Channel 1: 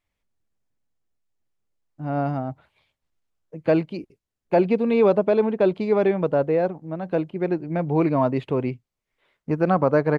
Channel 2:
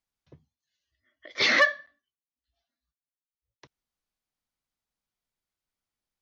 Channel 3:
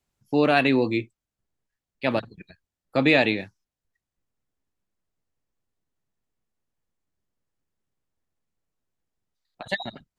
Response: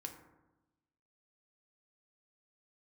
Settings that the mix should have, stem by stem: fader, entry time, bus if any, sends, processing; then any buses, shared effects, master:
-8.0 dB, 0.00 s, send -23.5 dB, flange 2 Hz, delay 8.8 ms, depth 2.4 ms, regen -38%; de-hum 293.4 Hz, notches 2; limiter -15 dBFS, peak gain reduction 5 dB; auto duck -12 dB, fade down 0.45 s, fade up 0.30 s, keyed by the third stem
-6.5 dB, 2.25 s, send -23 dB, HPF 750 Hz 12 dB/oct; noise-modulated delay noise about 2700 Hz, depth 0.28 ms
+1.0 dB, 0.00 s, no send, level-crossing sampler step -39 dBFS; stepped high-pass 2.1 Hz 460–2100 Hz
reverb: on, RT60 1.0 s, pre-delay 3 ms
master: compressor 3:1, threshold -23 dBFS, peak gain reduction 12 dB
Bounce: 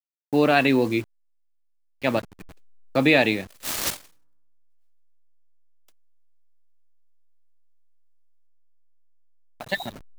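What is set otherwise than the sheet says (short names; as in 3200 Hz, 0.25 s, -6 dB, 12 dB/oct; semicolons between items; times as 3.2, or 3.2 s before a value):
stem 1: muted; stem 3: missing stepped high-pass 2.1 Hz 460–2100 Hz; master: missing compressor 3:1, threshold -23 dBFS, peak gain reduction 12 dB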